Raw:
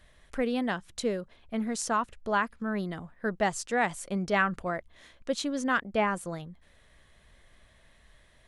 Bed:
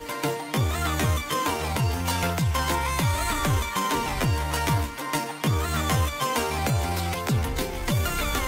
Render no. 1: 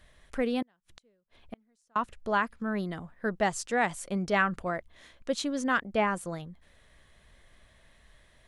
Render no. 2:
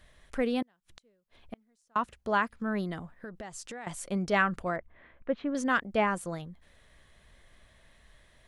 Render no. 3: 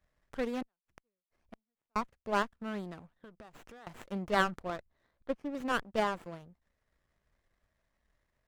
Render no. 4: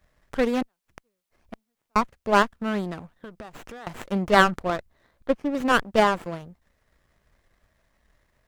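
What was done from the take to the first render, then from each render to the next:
0.62–1.96 s: inverted gate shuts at -28 dBFS, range -38 dB
1.97–2.53 s: high-pass 42 Hz; 3.11–3.87 s: compression 12:1, threshold -38 dBFS; 4.76–5.55 s: low-pass 2.2 kHz 24 dB/octave
power-law waveshaper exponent 1.4; sliding maximum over 9 samples
trim +11.5 dB; peak limiter -2 dBFS, peak gain reduction 1 dB

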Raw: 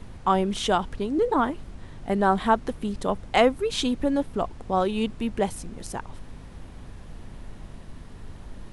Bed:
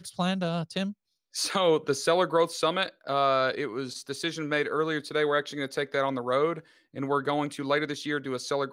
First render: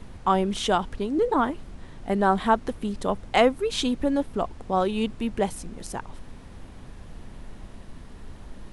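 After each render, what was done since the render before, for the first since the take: de-hum 50 Hz, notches 3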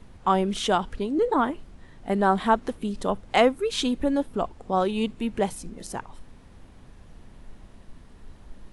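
noise print and reduce 6 dB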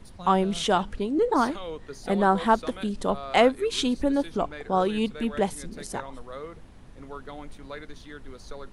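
add bed -13.5 dB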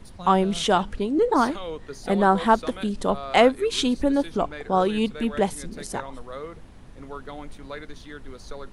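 trim +2.5 dB

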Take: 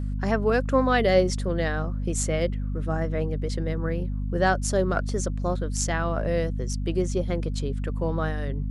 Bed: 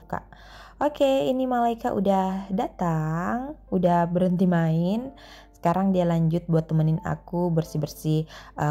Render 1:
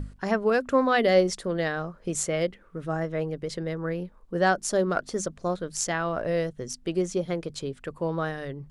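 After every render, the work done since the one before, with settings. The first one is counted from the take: hum notches 50/100/150/200/250 Hz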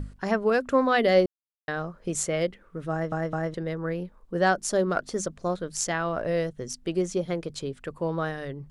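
1.26–1.68 s: mute; 2.91 s: stutter in place 0.21 s, 3 plays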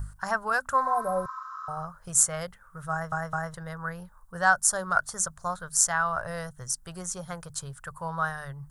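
FFT filter 140 Hz 0 dB, 310 Hz -26 dB, 890 Hz +4 dB, 1.5 kHz +7 dB, 2.3 kHz -11 dB, 4.3 kHz -3 dB, 9.2 kHz +13 dB; 0.88–1.81 s: spectral replace 1–7.8 kHz both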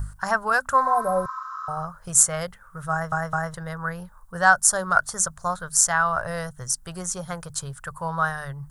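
trim +5 dB; peak limiter -1 dBFS, peak gain reduction 2.5 dB

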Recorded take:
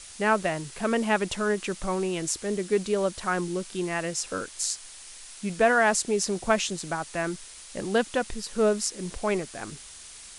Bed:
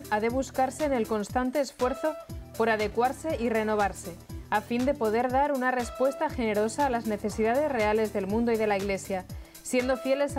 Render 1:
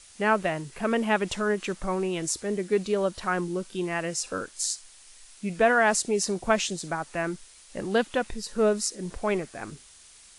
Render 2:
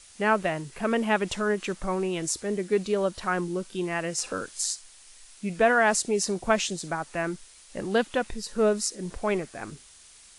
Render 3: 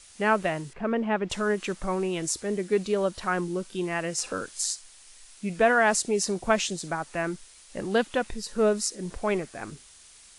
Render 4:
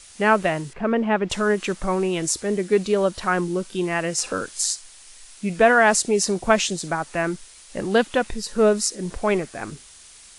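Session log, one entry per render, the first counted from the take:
noise print and reduce 7 dB
4.18–4.73 s: three bands compressed up and down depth 40%
0.73–1.30 s: tape spacing loss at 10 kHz 29 dB
trim +5.5 dB

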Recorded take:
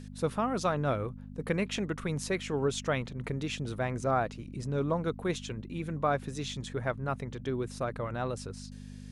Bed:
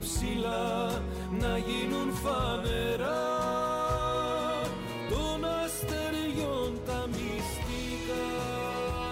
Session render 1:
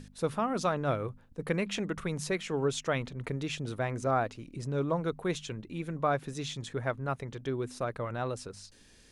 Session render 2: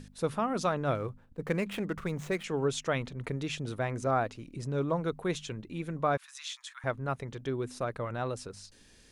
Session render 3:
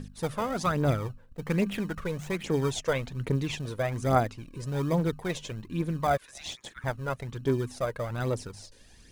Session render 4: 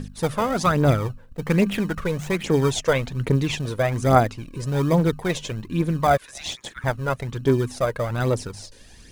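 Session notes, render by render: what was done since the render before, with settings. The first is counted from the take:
de-hum 50 Hz, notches 5
0.95–2.44 s: median filter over 9 samples; 6.17–6.84 s: steep high-pass 1 kHz 48 dB/octave
in parallel at -11 dB: sample-and-hold 32×; on the sum: phaser 1.2 Hz, delay 2.1 ms, feedback 53%
trim +7.5 dB

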